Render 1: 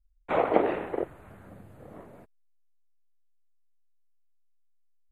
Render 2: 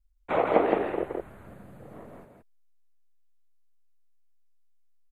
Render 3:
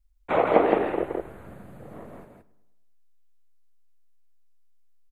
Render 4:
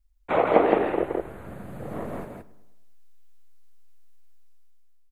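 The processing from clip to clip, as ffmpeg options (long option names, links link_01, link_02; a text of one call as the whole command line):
ffmpeg -i in.wav -af "aecho=1:1:168:0.668" out.wav
ffmpeg -i in.wav -filter_complex "[0:a]asplit=2[link_01][link_02];[link_02]adelay=104,lowpass=frequency=2800:poles=1,volume=-18dB,asplit=2[link_03][link_04];[link_04]adelay=104,lowpass=frequency=2800:poles=1,volume=0.54,asplit=2[link_05][link_06];[link_06]adelay=104,lowpass=frequency=2800:poles=1,volume=0.54,asplit=2[link_07][link_08];[link_08]adelay=104,lowpass=frequency=2800:poles=1,volume=0.54,asplit=2[link_09][link_10];[link_10]adelay=104,lowpass=frequency=2800:poles=1,volume=0.54[link_11];[link_01][link_03][link_05][link_07][link_09][link_11]amix=inputs=6:normalize=0,volume=3dB" out.wav
ffmpeg -i in.wav -af "dynaudnorm=framelen=240:gausssize=7:maxgain=11dB" out.wav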